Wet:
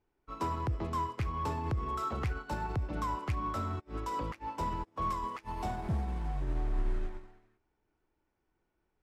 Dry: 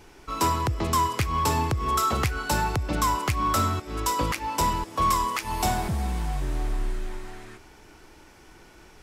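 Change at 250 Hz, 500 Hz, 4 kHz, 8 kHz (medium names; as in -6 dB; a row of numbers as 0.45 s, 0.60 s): -8.5 dB, -9.0 dB, -18.5 dB, -23.5 dB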